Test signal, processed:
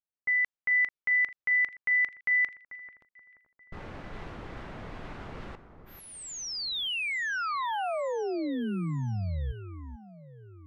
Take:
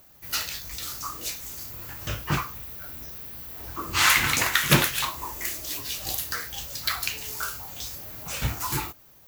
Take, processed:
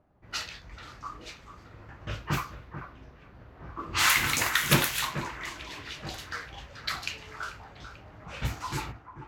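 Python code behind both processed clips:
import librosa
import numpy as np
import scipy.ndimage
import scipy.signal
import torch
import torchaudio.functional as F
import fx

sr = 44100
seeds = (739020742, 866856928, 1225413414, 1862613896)

y = fx.echo_alternate(x, sr, ms=440, hz=2100.0, feedback_pct=63, wet_db=-10.5)
y = fx.env_lowpass(y, sr, base_hz=930.0, full_db=-20.5)
y = F.gain(torch.from_numpy(y), -3.5).numpy()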